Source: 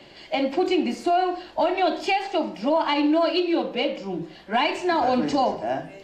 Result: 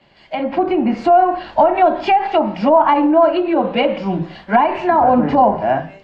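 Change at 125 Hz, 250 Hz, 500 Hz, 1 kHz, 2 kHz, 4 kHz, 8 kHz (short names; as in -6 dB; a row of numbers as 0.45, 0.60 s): +13.0 dB, +6.5 dB, +8.5 dB, +10.5 dB, +4.0 dB, -1.5 dB, n/a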